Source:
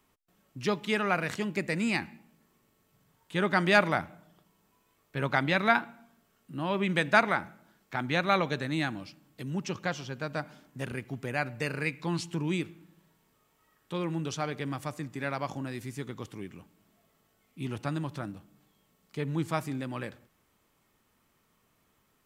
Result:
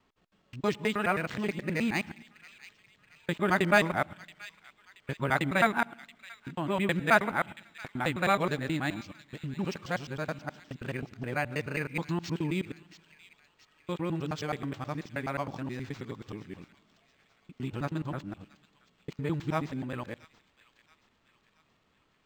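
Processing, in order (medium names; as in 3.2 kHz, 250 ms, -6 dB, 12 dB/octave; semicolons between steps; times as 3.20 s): time reversed locally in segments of 106 ms; feedback echo behind a high-pass 677 ms, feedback 50%, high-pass 2.5 kHz, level -13.5 dB; decimation joined by straight lines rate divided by 4×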